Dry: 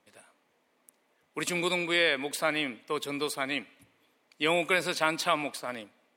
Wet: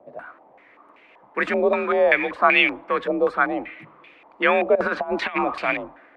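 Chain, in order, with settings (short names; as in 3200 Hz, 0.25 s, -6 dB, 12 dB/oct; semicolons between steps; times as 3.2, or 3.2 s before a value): G.711 law mismatch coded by mu; frequency shift +44 Hz; 4.75–5.74 negative-ratio compressor -31 dBFS, ratio -0.5; low shelf 90 Hz +8.5 dB; stepped low-pass 5.2 Hz 650–2500 Hz; gain +5.5 dB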